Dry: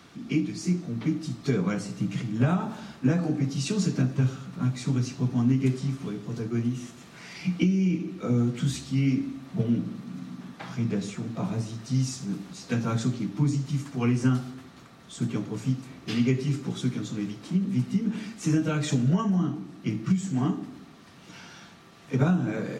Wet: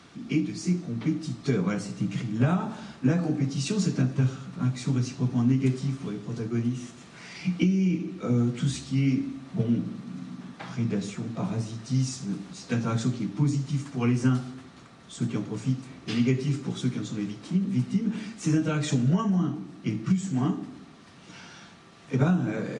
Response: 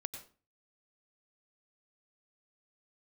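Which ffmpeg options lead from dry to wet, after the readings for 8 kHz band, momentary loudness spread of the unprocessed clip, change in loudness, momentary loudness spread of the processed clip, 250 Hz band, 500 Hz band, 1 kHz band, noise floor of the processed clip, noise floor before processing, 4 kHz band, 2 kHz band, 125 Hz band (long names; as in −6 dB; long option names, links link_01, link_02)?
0.0 dB, 12 LU, 0.0 dB, 12 LU, 0.0 dB, 0.0 dB, 0.0 dB, −50 dBFS, −50 dBFS, 0.0 dB, 0.0 dB, 0.0 dB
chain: -af "aresample=22050,aresample=44100"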